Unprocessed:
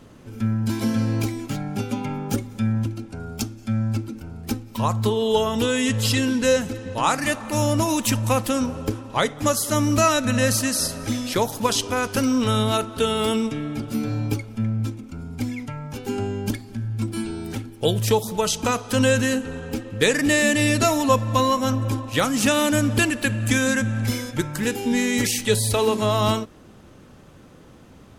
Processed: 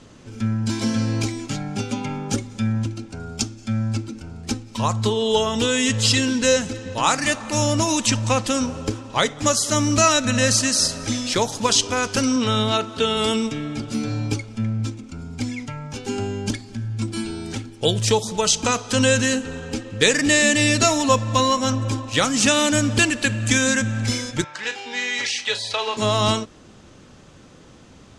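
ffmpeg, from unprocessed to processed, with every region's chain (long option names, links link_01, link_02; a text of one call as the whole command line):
ffmpeg -i in.wav -filter_complex "[0:a]asettb=1/sr,asplit=3[link_01][link_02][link_03];[link_01]atrim=end=8.064[link_04];[link_02]atrim=start=8.06:end=8.47,asetpts=PTS-STARTPTS,afade=type=in:duration=0.004:curve=qsin,afade=type=out:start_time=0.406:duration=0.004:curve=qsin,lowpass=7600,acrusher=bits=8:mode=log:mix=0:aa=0.000001[link_05];[link_03]atrim=start=8.466[link_06];[link_04][link_05]acrossfade=duration=0.004:curve1=hsin:curve2=qsin[link_07];[link_07][link_06]acrossfade=duration=0.004:curve1=qsin:curve2=hsin,asettb=1/sr,asplit=3[link_08][link_09][link_10];[link_08]atrim=end=12.364[link_11];[link_09]atrim=start=12.36:end=13.17,asetpts=PTS-STARTPTS,afade=type=in:duration=0.004:curve=qsin,afade=type=out:start_time=0.806:duration=0.004:curve=qsin,highpass=88,acrossover=split=5500[link_12][link_13];[link_13]acompressor=threshold=-48dB:ratio=4:attack=1:release=60[link_14];[link_12][link_14]amix=inputs=2:normalize=0[link_15];[link_10]atrim=start=13.166[link_16];[link_11][link_15]acrossfade=duration=0.004:curve1=hsin:curve2=qsin[link_17];[link_17][link_16]acrossfade=duration=0.004:curve1=qsin:curve2=hsin,asettb=1/sr,asplit=3[link_18][link_19][link_20];[link_18]atrim=end=24.444[link_21];[link_19]atrim=start=24.44:end=25.97,asetpts=PTS-STARTPTS,afade=type=in:duration=0.004:curve=qsin,afade=type=out:start_time=1.526:duration=0.004:curve=qsin,highpass=51,acrossover=split=560 4900:gain=0.0708 1 0.0794[link_22][link_23][link_24];[link_22][link_23][link_24]amix=inputs=3:normalize=0,asplit=2[link_25][link_26];[link_26]adelay=36,volume=-11dB[link_27];[link_25][link_27]amix=inputs=2:normalize=0,atrim=end_sample=67473[link_28];[link_20]atrim=start=25.966[link_29];[link_21][link_28]acrossfade=duration=0.004:curve1=hsin:curve2=qsin[link_30];[link_30][link_29]acrossfade=duration=0.004:curve1=qsin:curve2=hsin,lowpass=frequency=7800:width=0.5412,lowpass=frequency=7800:width=1.3066,highshelf=frequency=3200:gain=9.5" out.wav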